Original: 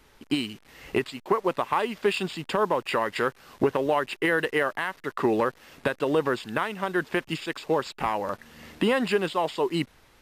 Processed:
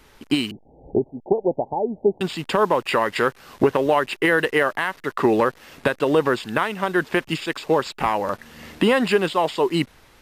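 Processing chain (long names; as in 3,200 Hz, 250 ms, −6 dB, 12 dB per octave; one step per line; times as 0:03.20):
0:00.51–0:02.21: Butterworth low-pass 850 Hz 96 dB per octave
level +5.5 dB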